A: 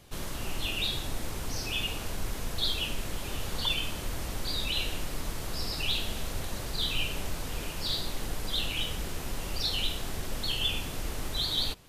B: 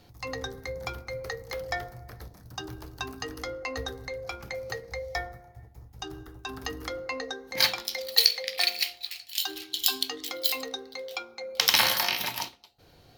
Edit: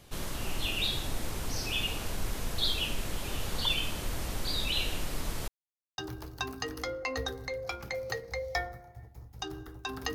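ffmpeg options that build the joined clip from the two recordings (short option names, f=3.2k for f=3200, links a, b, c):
-filter_complex "[0:a]apad=whole_dur=10.14,atrim=end=10.14,asplit=2[a][b];[a]atrim=end=5.48,asetpts=PTS-STARTPTS,afade=t=out:st=5.476:d=0.004:c=hsin[c];[b]atrim=start=5.48:end=5.98,asetpts=PTS-STARTPTS,volume=0[d];[1:a]atrim=start=2.58:end=6.74,asetpts=PTS-STARTPTS,afade=t=in:d=0.004:c=hsin[e];[c][d][e]concat=n=3:v=0:a=1"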